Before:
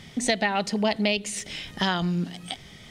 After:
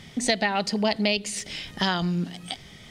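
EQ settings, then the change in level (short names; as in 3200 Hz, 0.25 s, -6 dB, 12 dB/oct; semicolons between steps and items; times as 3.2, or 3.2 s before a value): dynamic EQ 4700 Hz, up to +7 dB, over -50 dBFS, Q 5.5; 0.0 dB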